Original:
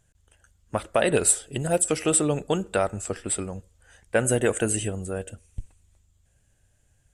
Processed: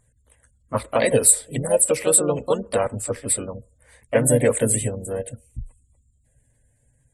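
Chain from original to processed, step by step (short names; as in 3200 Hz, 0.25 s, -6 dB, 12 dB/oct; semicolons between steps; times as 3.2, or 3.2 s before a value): spectral gate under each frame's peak -30 dB strong; ripple EQ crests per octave 0.97, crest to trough 12 dB; harmoniser +3 st -5 dB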